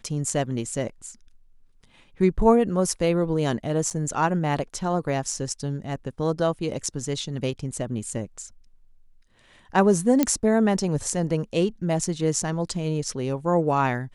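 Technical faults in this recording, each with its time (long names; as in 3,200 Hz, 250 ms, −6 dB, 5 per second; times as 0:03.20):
0:03.90–0:03.91: drop-out 7.7 ms
0:10.23: click −6 dBFS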